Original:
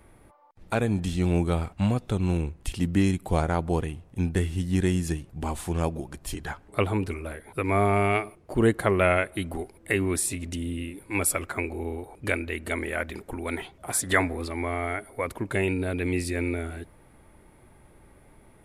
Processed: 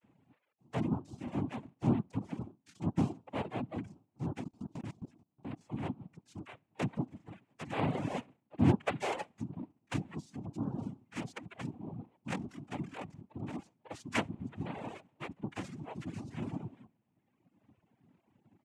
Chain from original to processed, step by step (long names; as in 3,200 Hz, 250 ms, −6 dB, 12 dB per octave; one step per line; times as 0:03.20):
on a send: repeating echo 66 ms, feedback 36%, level −20 dB
on the sum: harmonic generator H 2 −19 dB, 3 −11 dB, 8 −42 dB, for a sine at −5.5 dBFS
channel vocoder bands 32, square 228 Hz
in parallel at −2.5 dB: downward compressor 8 to 1, threshold −46 dBFS, peak gain reduction 20.5 dB
on the sum: parametric band 390 Hz −5.5 dB 0.43 octaves
cochlear-implant simulation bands 4
reverb reduction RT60 1.4 s
0:04.44–0:05.61: output level in coarse steps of 22 dB
level +3.5 dB